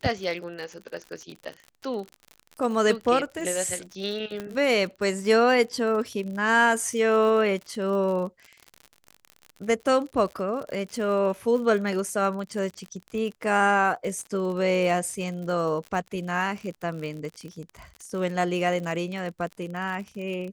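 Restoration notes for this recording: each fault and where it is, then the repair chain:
crackle 54/s -33 dBFS
4.4 pop -19 dBFS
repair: de-click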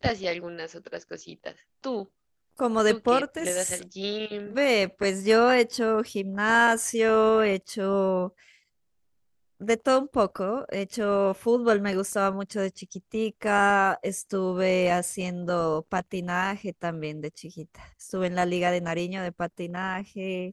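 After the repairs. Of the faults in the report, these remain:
4.4 pop

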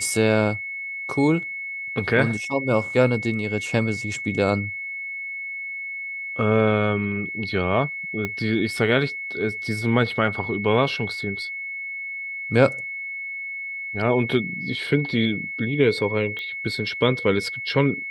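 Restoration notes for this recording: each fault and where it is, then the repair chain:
tone 2200 Hz -29 dBFS
8.25 pop -13 dBFS
16.39 pop -21 dBFS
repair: de-click; notch 2200 Hz, Q 30

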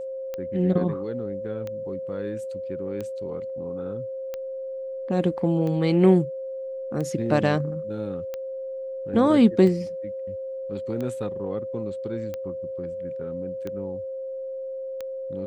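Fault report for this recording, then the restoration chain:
tick 45 rpm -20 dBFS
tone 530 Hz -30 dBFS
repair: de-click; notch 530 Hz, Q 30

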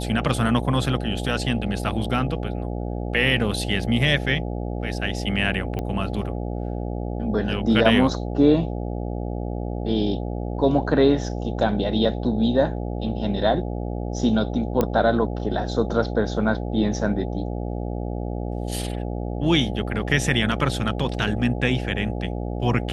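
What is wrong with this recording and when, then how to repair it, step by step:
buzz 60 Hz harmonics 14 -28 dBFS
5.79 pop -16 dBFS
14.81 pop -8 dBFS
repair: de-click; de-hum 60 Hz, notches 14

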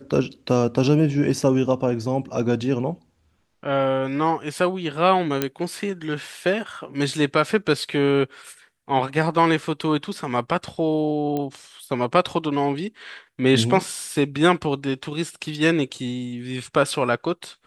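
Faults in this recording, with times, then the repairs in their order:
5.42 pop -6 dBFS
11.37 pop -15 dBFS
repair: de-click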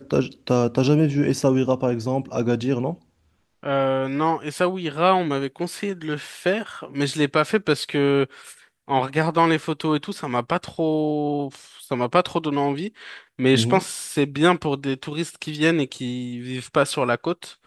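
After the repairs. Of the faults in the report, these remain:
none

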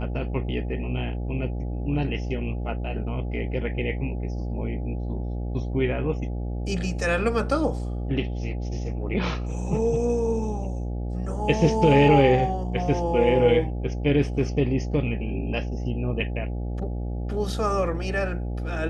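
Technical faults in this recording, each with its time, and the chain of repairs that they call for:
buzz 60 Hz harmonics 14 -29 dBFS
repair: de-hum 60 Hz, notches 14

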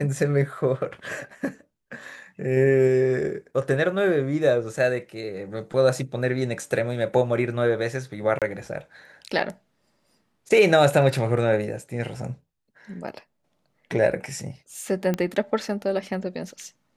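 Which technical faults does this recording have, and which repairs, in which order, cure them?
8.39–8.42 gap 27 ms
15.14 pop -13 dBFS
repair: de-click; interpolate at 8.39, 27 ms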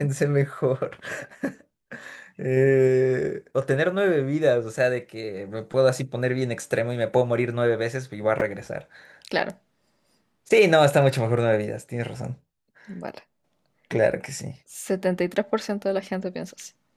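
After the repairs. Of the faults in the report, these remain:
none

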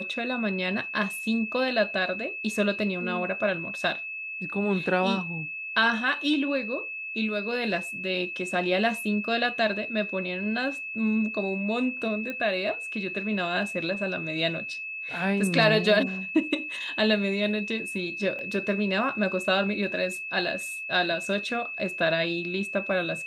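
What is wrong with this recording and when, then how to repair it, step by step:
tone 2600 Hz -33 dBFS
12.3 pop -20 dBFS
18.39 gap 2.1 ms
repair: de-click; notch 2600 Hz, Q 30; interpolate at 18.39, 2.1 ms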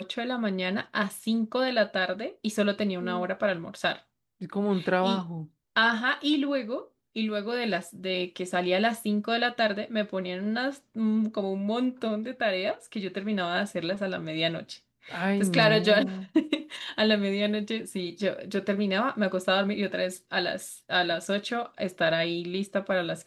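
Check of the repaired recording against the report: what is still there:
none

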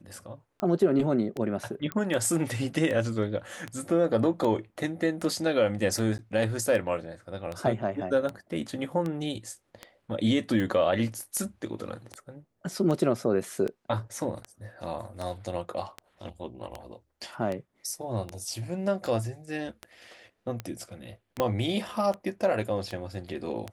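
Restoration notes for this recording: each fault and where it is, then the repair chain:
tick 78 rpm -20 dBFS
1.92 pop -17 dBFS
6.18–6.19 gap 9.8 ms
21.4 pop -12 dBFS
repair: de-click; interpolate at 6.18, 9.8 ms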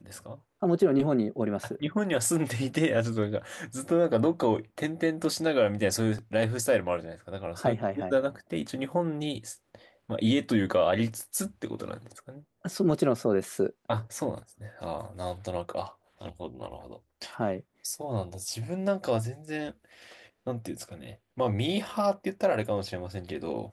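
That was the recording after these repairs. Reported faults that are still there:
21.4 pop

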